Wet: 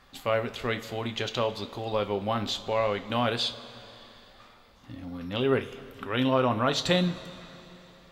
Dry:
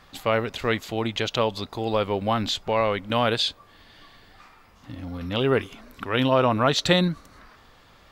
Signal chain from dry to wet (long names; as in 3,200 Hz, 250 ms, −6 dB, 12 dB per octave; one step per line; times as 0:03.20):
coupled-rooms reverb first 0.26 s, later 3.6 s, from −18 dB, DRR 7 dB
level −5.5 dB